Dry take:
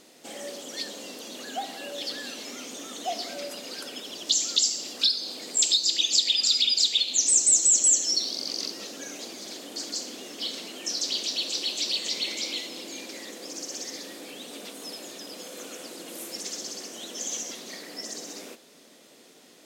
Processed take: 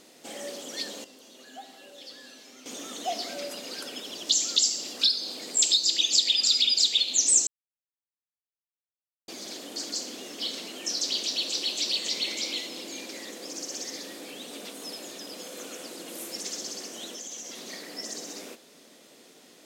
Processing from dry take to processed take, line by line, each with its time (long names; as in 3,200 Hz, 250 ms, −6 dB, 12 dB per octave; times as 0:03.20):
0:01.04–0:02.66: tuned comb filter 130 Hz, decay 0.94 s, mix 80%
0:07.47–0:09.28: silence
0:17.07–0:17.66: downward compressor 5 to 1, threshold −36 dBFS